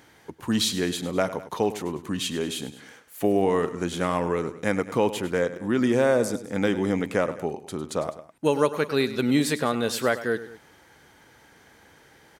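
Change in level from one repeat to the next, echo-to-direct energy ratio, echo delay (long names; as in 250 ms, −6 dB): −5.5 dB, −13.0 dB, 102 ms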